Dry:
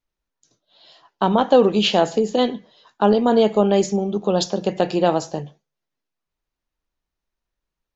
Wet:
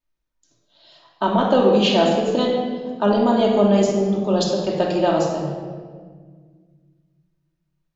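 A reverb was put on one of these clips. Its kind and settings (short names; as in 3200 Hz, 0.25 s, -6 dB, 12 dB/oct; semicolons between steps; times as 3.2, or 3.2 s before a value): shoebox room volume 2000 m³, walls mixed, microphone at 2.7 m; gain -4 dB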